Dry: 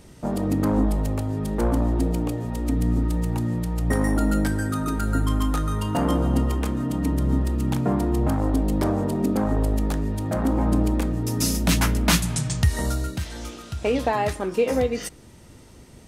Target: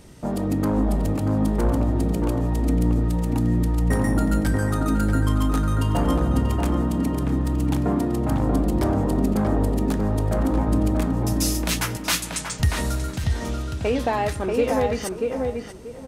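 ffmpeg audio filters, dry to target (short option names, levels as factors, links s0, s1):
-filter_complex "[0:a]asettb=1/sr,asplit=3[s0][s1][s2];[s0]atrim=end=11.334[s3];[s1]atrim=start=11.33:end=12.6,asetpts=PTS-STARTPTS,afade=t=in:d=0.004:c=qsin,afade=t=out:st=1.266:d=0.004:c=qsin,highpass=f=1000:p=1[s4];[s2]atrim=start=12.596[s5];[s3][s4]acrossfade=d=0.004:c1=hsin:c2=qsin[s6];[s6][s5]acrossfade=d=0.004:c1=qsin:c2=hsin,asplit=2[s7][s8];[s8]asoftclip=type=tanh:threshold=0.0631,volume=0.398[s9];[s7][s9]amix=inputs=2:normalize=0,asplit=2[s10][s11];[s11]adelay=636,lowpass=f=1800:p=1,volume=0.708,asplit=2[s12][s13];[s13]adelay=636,lowpass=f=1800:p=1,volume=0.24,asplit=2[s14][s15];[s15]adelay=636,lowpass=f=1800:p=1,volume=0.24[s16];[s10][s12][s14][s16]amix=inputs=4:normalize=0,volume=0.794"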